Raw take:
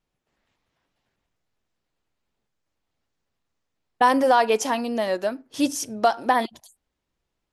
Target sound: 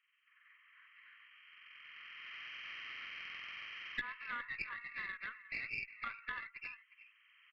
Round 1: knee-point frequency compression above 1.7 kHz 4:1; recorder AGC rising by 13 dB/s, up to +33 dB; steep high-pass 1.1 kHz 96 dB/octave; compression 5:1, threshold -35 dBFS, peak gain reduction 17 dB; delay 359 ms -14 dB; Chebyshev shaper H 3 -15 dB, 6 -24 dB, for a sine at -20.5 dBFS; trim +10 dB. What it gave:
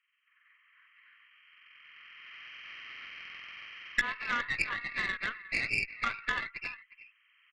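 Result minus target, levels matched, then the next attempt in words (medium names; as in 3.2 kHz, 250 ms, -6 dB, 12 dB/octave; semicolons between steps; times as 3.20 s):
compression: peak gain reduction -9 dB
knee-point frequency compression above 1.7 kHz 4:1; recorder AGC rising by 13 dB/s, up to +33 dB; steep high-pass 1.1 kHz 96 dB/octave; compression 5:1, threshold -46.5 dBFS, peak gain reduction 26.5 dB; delay 359 ms -14 dB; Chebyshev shaper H 3 -15 dB, 6 -24 dB, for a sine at -20.5 dBFS; trim +10 dB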